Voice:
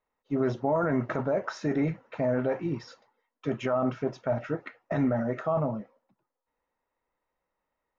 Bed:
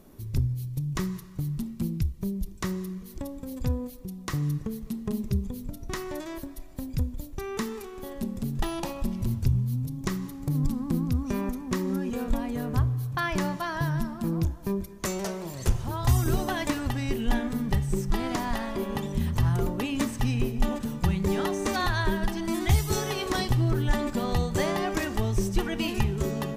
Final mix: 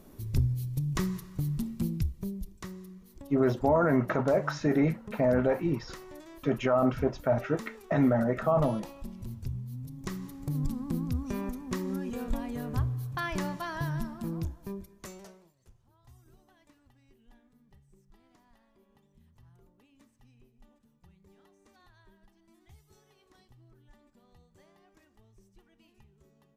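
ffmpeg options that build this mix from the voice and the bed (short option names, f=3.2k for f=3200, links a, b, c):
-filter_complex "[0:a]adelay=3000,volume=2dB[a];[1:a]volume=6.5dB,afade=t=out:st=1.74:d=0.95:silence=0.266073,afade=t=in:st=9.69:d=0.67:silence=0.446684,afade=t=out:st=14.03:d=1.51:silence=0.0316228[b];[a][b]amix=inputs=2:normalize=0"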